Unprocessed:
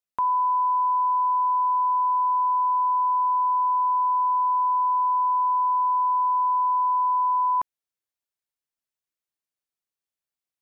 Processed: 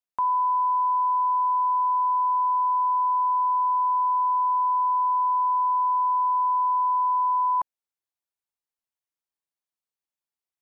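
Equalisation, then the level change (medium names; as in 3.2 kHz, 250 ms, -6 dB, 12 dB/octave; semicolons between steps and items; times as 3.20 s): peaking EQ 870 Hz +5 dB 0.77 oct; -4.5 dB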